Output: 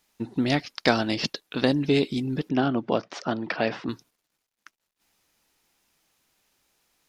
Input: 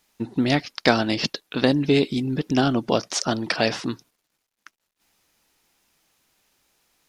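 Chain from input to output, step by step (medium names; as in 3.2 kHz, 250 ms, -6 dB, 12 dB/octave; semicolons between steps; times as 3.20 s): 2.49–3.89 s: band-pass 120–2600 Hz; trim -3 dB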